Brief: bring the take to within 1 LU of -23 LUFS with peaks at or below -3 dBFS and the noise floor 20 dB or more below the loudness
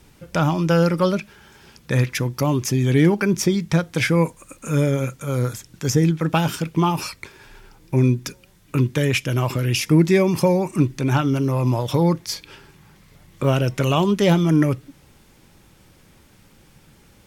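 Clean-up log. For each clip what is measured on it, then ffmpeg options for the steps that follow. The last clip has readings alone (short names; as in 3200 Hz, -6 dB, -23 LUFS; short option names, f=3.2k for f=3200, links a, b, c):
loudness -20.5 LUFS; peak -5.0 dBFS; loudness target -23.0 LUFS
-> -af "volume=-2.5dB"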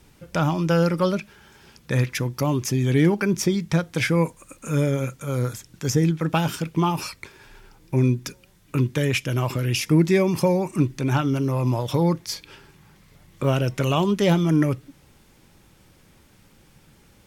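loudness -23.0 LUFS; peak -7.5 dBFS; noise floor -56 dBFS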